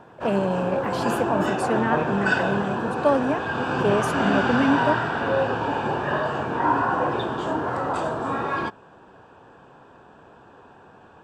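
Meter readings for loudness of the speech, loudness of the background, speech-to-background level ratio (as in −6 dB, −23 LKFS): −26.0 LKFS, −24.5 LKFS, −1.5 dB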